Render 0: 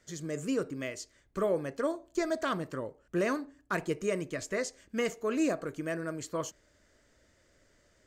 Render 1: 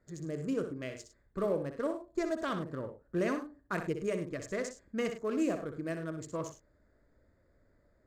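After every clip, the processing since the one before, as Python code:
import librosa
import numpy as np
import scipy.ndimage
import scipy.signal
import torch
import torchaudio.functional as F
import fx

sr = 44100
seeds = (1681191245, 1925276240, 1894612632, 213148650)

y = fx.wiener(x, sr, points=15)
y = fx.low_shelf(y, sr, hz=220.0, db=4.5)
y = fx.echo_multitap(y, sr, ms=(62, 102), db=(-8.5, -14.0))
y = y * librosa.db_to_amplitude(-3.5)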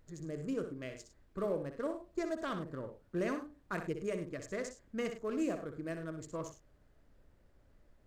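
y = fx.dmg_noise_colour(x, sr, seeds[0], colour='brown', level_db=-61.0)
y = y * librosa.db_to_amplitude(-3.5)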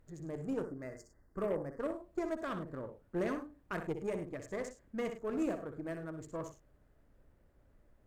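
y = fx.spec_box(x, sr, start_s=0.64, length_s=1.17, low_hz=2100.0, high_hz=4400.0, gain_db=-29)
y = fx.peak_eq(y, sr, hz=4600.0, db=-7.0, octaves=1.7)
y = fx.cheby_harmonics(y, sr, harmonics=(6,), levels_db=(-22,), full_scale_db=-23.0)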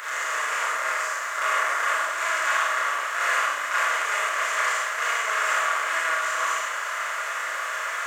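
y = fx.bin_compress(x, sr, power=0.2)
y = scipy.signal.sosfilt(scipy.signal.butter(4, 1100.0, 'highpass', fs=sr, output='sos'), y)
y = fx.rev_schroeder(y, sr, rt60_s=0.79, comb_ms=27, drr_db=-7.0)
y = y * librosa.db_to_amplitude(8.0)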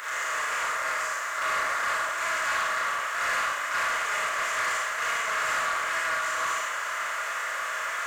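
y = fx.leveller(x, sr, passes=2)
y = y * librosa.db_to_amplitude(-9.0)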